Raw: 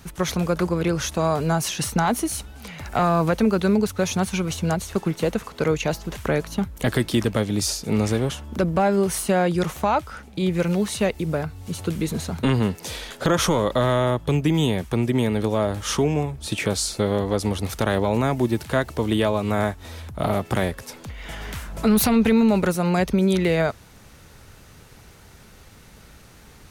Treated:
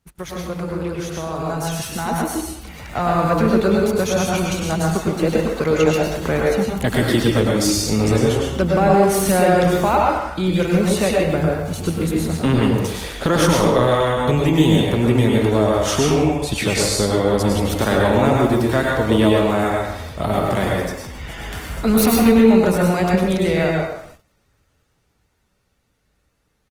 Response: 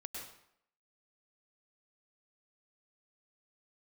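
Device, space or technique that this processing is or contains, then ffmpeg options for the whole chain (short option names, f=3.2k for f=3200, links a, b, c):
speakerphone in a meeting room: -filter_complex "[1:a]atrim=start_sample=2205[a];[0:a][a]afir=irnorm=-1:irlink=0,asplit=2[b][c];[c]adelay=130,highpass=300,lowpass=3.4k,asoftclip=type=hard:threshold=-18.5dB,volume=-8dB[d];[b][d]amix=inputs=2:normalize=0,dynaudnorm=f=340:g=17:m=14dB,agate=range=-17dB:threshold=-40dB:ratio=16:detection=peak,volume=-1dB" -ar 48000 -c:a libopus -b:a 24k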